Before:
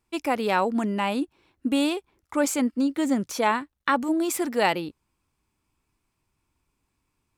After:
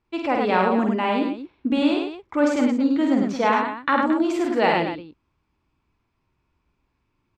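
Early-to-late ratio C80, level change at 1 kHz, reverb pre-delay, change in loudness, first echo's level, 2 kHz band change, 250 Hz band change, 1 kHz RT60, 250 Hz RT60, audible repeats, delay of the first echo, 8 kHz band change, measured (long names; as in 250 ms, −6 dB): no reverb audible, +4.0 dB, no reverb audible, +4.0 dB, −5.0 dB, +3.0 dB, +4.5 dB, no reverb audible, no reverb audible, 4, 48 ms, below −10 dB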